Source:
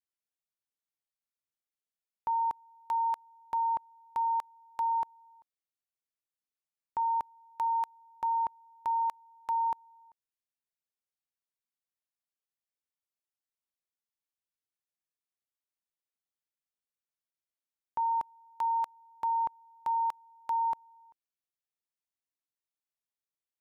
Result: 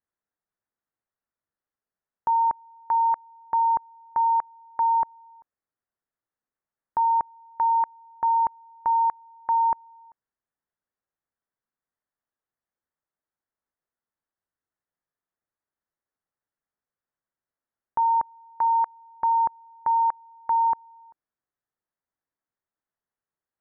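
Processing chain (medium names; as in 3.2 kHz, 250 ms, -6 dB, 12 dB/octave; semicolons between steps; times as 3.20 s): steep low-pass 1.9 kHz 48 dB/octave; trim +8 dB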